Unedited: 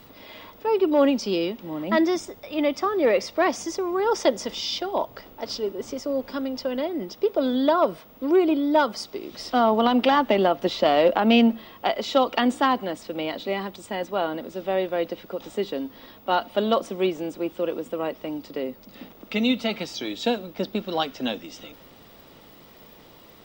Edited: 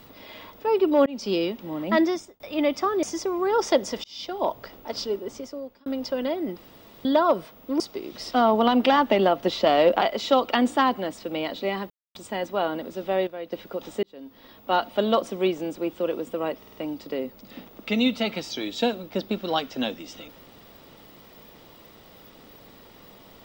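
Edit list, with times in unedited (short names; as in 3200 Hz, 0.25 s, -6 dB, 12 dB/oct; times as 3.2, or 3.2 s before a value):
1.06–1.31 fade in
2.02–2.4 fade out
3.03–3.56 cut
4.57–4.97 fade in
5.64–6.39 fade out
7.1–7.58 room tone
8.33–8.99 cut
11.2–11.85 cut
13.74 insert silence 0.25 s
14.86–15.11 gain -10 dB
15.62–16.32 fade in linear
18.18 stutter 0.05 s, 4 plays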